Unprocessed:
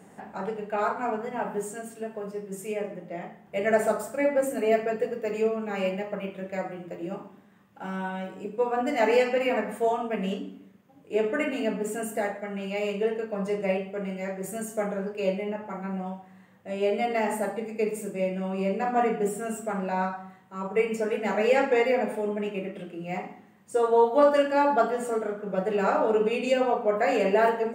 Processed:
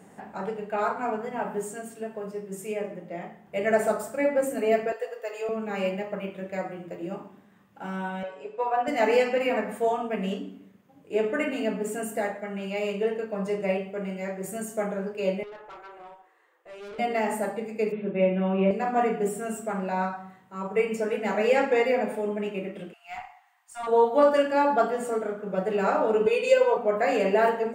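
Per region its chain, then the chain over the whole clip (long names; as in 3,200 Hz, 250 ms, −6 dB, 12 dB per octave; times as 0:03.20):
0:04.92–0:05.49: high-pass filter 530 Hz 24 dB per octave + notch filter 2,300 Hz, Q 9.4
0:08.23–0:08.88: band-pass filter 110–5,000 Hz + low shelf with overshoot 400 Hz −11.5 dB, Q 1.5 + comb filter 7.2 ms, depth 50%
0:15.43–0:16.99: Chebyshev high-pass with heavy ripple 320 Hz, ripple 6 dB + tube saturation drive 39 dB, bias 0.4
0:17.92–0:18.71: Butterworth low-pass 3,700 Hz 72 dB per octave + comb filter 5.3 ms, depth 82%
0:22.93–0:23.87: Butterworth high-pass 690 Hz 96 dB per octave + tube saturation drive 26 dB, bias 0.5
0:26.26–0:26.77: high-pass filter 190 Hz + comb filter 2 ms, depth 82%
whole clip: no processing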